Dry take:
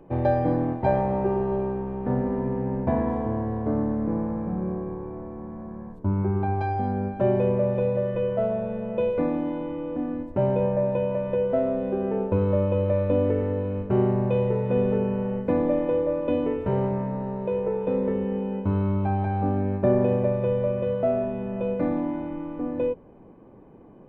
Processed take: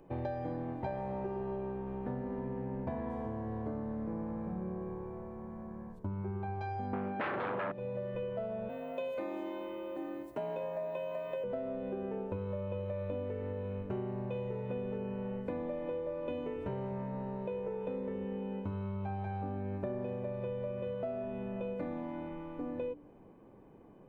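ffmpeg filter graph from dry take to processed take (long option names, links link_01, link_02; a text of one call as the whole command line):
ffmpeg -i in.wav -filter_complex "[0:a]asettb=1/sr,asplit=3[link_01][link_02][link_03];[link_01]atrim=end=6.934[link_04];[link_02]atrim=start=6.93:end=7.72,asetpts=PTS-STARTPTS,afade=type=in:duration=0.004:curve=qsin,afade=type=out:start_time=0.786:duration=0.004:curve=qsin,aeval=exprs='0.299*sin(PI/2*3.98*val(0)/0.299)':channel_layout=same,highpass=170,lowpass=3200[link_05];[link_03]atrim=start=7.716[link_06];[link_04][link_05]acrossfade=duration=0.004:curve1=hsin:curve2=qsin[link_07];[link_07][link_06]acrossfade=duration=0.004:curve1=qsin:curve2=hsin,asettb=1/sr,asplit=3[link_08][link_09][link_10];[link_08]atrim=end=8.694[link_11];[link_09]atrim=start=8.69:end=11.44,asetpts=PTS-STARTPTS,afade=type=in:duration=0.004:curve=qsin,afade=type=out:start_time=2.746:duration=0.004:curve=qsin,aemphasis=mode=production:type=bsi,afreqshift=39[link_12];[link_10]atrim=start=11.436[link_13];[link_11][link_12]acrossfade=duration=0.004:curve1=hsin:curve2=qsin[link_14];[link_14][link_13]acrossfade=duration=0.004:curve1=qsin:curve2=hsin,highshelf=frequency=2700:gain=9,bandreject=frequency=58.79:width_type=h:width=4,bandreject=frequency=117.58:width_type=h:width=4,bandreject=frequency=176.37:width_type=h:width=4,bandreject=frequency=235.16:width_type=h:width=4,bandreject=frequency=293.95:width_type=h:width=4,bandreject=frequency=352.74:width_type=h:width=4,acompressor=threshold=-27dB:ratio=6,volume=-7.5dB" out.wav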